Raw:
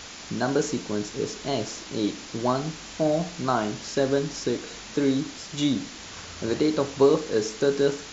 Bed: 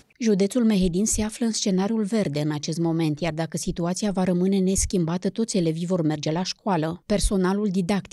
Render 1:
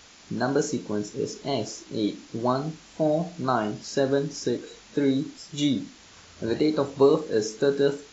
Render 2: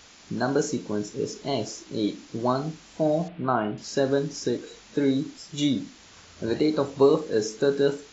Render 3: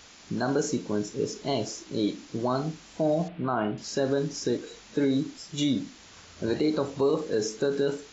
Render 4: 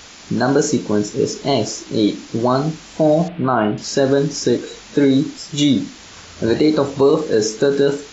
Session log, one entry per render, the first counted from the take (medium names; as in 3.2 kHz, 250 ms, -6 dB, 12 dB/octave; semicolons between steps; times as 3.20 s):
noise print and reduce 10 dB
3.28–3.78 s: steep low-pass 3.2 kHz
peak limiter -16 dBFS, peak gain reduction 7.5 dB
trim +11 dB